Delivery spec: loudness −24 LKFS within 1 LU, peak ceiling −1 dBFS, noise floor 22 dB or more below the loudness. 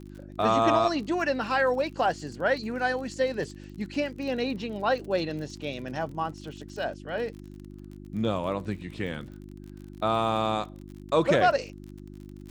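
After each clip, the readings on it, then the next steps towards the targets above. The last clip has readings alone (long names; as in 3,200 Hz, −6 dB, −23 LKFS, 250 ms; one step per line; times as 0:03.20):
crackle rate 46 per second; mains hum 50 Hz; hum harmonics up to 350 Hz; level of the hum −41 dBFS; integrated loudness −28.0 LKFS; sample peak −10.5 dBFS; target loudness −24.0 LKFS
→ click removal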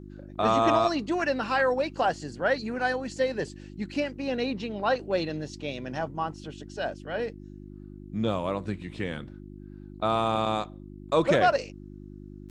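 crackle rate 0.16 per second; mains hum 50 Hz; hum harmonics up to 350 Hz; level of the hum −41 dBFS
→ hum removal 50 Hz, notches 7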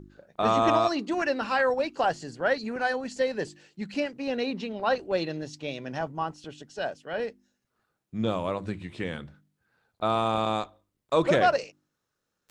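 mains hum none found; integrated loudness −28.0 LKFS; sample peak −10.5 dBFS; target loudness −24.0 LKFS
→ level +4 dB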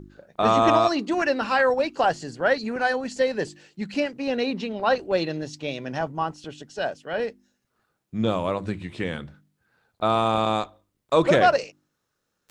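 integrated loudness −24.0 LKFS; sample peak −6.5 dBFS; background noise floor −78 dBFS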